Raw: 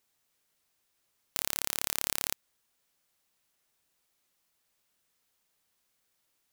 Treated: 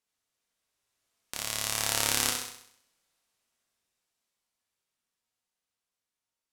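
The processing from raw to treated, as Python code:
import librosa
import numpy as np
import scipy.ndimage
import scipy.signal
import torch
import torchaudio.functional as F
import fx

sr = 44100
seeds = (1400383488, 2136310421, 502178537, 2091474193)

y = fx.doppler_pass(x, sr, speed_mps=7, closest_m=2.7, pass_at_s=2.17)
y = scipy.signal.sosfilt(scipy.signal.butter(2, 11000.0, 'lowpass', fs=sr, output='sos'), y)
y = fx.room_flutter(y, sr, wall_m=11.1, rt60_s=0.65)
y = fx.rev_gated(y, sr, seeds[0], gate_ms=220, shape='falling', drr_db=3.0)
y = y * librosa.db_to_amplitude(6.0)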